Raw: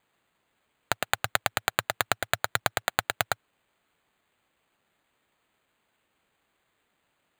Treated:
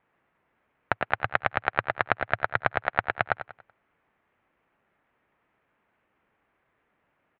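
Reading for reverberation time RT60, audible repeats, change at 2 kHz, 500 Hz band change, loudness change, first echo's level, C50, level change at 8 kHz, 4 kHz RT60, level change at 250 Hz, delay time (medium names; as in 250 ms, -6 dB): no reverb, 3, +2.0 dB, +3.0 dB, +1.0 dB, -11.5 dB, no reverb, under -35 dB, no reverb, +3.0 dB, 95 ms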